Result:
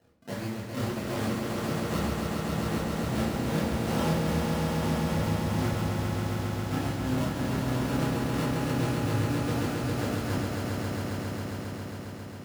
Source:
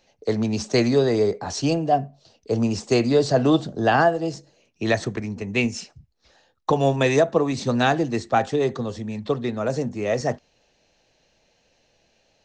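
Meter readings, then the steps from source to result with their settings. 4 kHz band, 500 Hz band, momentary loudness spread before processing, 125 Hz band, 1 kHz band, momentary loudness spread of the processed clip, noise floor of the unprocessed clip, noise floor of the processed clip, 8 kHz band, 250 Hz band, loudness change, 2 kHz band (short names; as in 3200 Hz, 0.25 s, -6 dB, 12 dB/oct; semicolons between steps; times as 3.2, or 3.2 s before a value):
-6.0 dB, -11.5 dB, 11 LU, -0.5 dB, -9.0 dB, 7 LU, -66 dBFS, -39 dBFS, -4.0 dB, -4.5 dB, -7.5 dB, -7.5 dB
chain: cycle switcher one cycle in 2, inverted; tone controls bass +13 dB, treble +5 dB; reverse; compressor 6:1, threshold -28 dBFS, peak gain reduction 19.5 dB; reverse; decimation with a swept rate 37×, swing 100% 1.7 Hz; chorus voices 2, 0.49 Hz, delay 28 ms, depth 4.1 ms; tremolo 2.5 Hz, depth 56%; HPF 91 Hz 12 dB/oct; on a send: swelling echo 0.135 s, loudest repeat 5, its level -5.5 dB; on the sum: shoebox room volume 62 m³, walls mixed, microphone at 0.78 m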